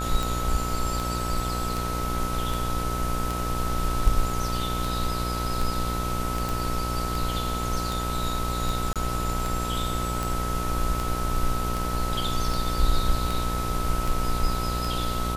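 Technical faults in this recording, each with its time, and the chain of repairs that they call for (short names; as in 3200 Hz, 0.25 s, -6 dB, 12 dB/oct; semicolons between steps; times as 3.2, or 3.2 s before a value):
buzz 60 Hz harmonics 25 -30 dBFS
tick 78 rpm
tone 1300 Hz -31 dBFS
6.49 pop
8.93–8.96 gap 27 ms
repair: de-click; notch 1300 Hz, Q 30; de-hum 60 Hz, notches 25; interpolate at 8.93, 27 ms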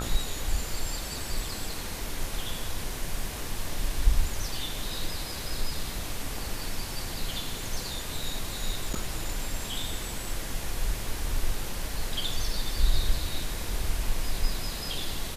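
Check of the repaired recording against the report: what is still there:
none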